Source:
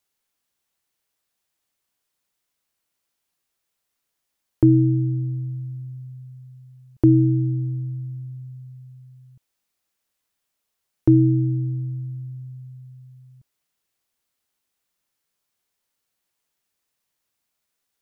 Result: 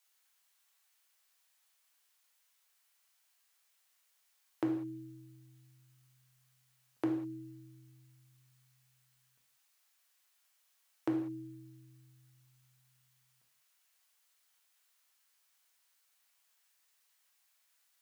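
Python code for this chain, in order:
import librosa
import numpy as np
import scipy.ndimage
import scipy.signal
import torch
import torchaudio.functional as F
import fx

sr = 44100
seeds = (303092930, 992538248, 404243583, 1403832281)

y = scipy.signal.sosfilt(scipy.signal.butter(2, 900.0, 'highpass', fs=sr, output='sos'), x)
y = fx.rev_gated(y, sr, seeds[0], gate_ms=220, shape='falling', drr_db=0.5)
y = y * 10.0 ** (2.0 / 20.0)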